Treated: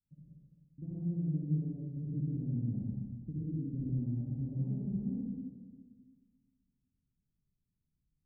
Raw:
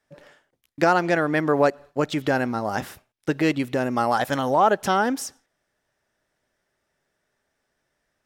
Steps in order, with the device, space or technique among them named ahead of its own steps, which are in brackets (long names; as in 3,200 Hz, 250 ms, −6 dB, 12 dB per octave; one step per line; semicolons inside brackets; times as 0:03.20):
0:03.32–0:03.74: high-pass filter 200 Hz
club heard from the street (brickwall limiter −14.5 dBFS, peak gain reduction 8.5 dB; low-pass filter 190 Hz 24 dB per octave; convolution reverb RT60 1.6 s, pre-delay 56 ms, DRR −6.5 dB)
level −6 dB